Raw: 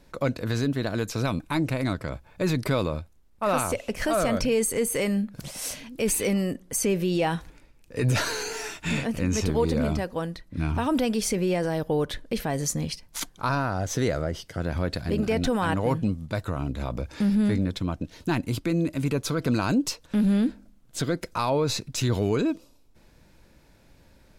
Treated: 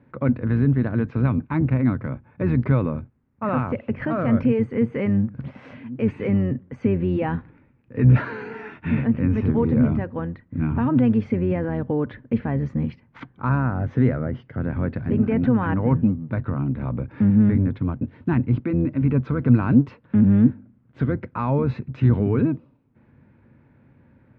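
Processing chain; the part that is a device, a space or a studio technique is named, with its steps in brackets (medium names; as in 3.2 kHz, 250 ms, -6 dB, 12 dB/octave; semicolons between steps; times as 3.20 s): sub-octave bass pedal (octave divider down 1 oct, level -5 dB; cabinet simulation 88–2100 Hz, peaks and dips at 95 Hz +6 dB, 130 Hz +10 dB, 240 Hz +10 dB, 670 Hz -5 dB)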